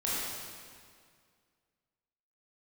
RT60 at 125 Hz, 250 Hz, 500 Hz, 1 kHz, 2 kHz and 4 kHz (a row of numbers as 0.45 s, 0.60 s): 2.3 s, 2.2 s, 2.1 s, 2.0 s, 1.9 s, 1.8 s